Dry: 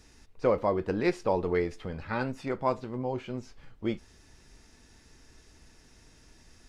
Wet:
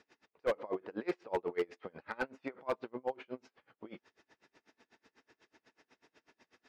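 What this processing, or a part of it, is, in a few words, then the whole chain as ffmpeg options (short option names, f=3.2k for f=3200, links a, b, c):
helicopter radio: -af "highpass=360,lowpass=2.9k,aeval=exprs='val(0)*pow(10,-31*(0.5-0.5*cos(2*PI*8.1*n/s))/20)':c=same,asoftclip=type=hard:threshold=-28dB,volume=2.5dB"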